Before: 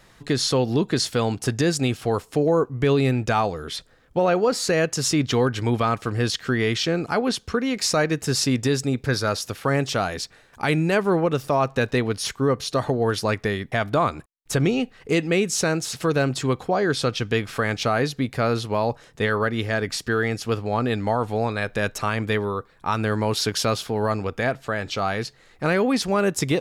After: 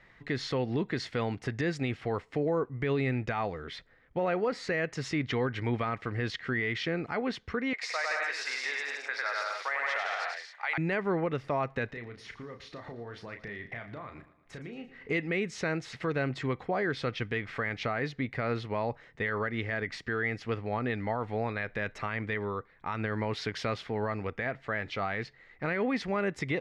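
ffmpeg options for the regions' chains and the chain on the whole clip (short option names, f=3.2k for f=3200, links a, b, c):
-filter_complex "[0:a]asettb=1/sr,asplit=3[a][b][c];[a]atrim=end=7.734[d];[b]atrim=start=7.73:end=10.78,asetpts=PTS-STARTPTS,afade=t=in:d=0.004:c=qsin,afade=t=out:st=3.046:d=0.004:c=qsin,highpass=f=700:w=0.5412,highpass=f=700:w=1.3066,aecho=1:1:100|170|219|253.3|277.3:0.794|0.631|0.501|0.398|0.316,atrim=end_sample=134505[e];[c]atrim=start=10.776[f];[d][e]acrossfade=d=0.004:c1=hsin:c2=qsin[g];[g][f]acrossfade=d=0.004:c1=qsin:c2=hsin,asettb=1/sr,asplit=3[h][i][j];[h]atrim=end=11.904[k];[i]atrim=start=11.9:end=15.1,asetpts=PTS-STARTPTS,afade=t=in:d=0.004:c=qsin,afade=t=out:st=3.196:d=0.004:c=qsin,acompressor=threshold=-33dB:ratio=6:attack=3.2:release=140:knee=1:detection=peak,asplit=2[l][m];[m]adelay=34,volume=-7dB[n];[l][n]amix=inputs=2:normalize=0,atrim=end_sample=141120,aecho=1:1:115|230|345|460:0.158|0.0792|0.0396|0.0198,atrim=end_sample=141120[o];[j]atrim=start=15.096[p];[k][o]acrossfade=d=0.004:c1=hsin:c2=qsin[q];[q][p]acrossfade=d=0.004:c1=qsin:c2=hsin,lowpass=3.2k,equalizer=f=2k:t=o:w=0.38:g=12,alimiter=limit=-13dB:level=0:latency=1:release=76,volume=-8dB"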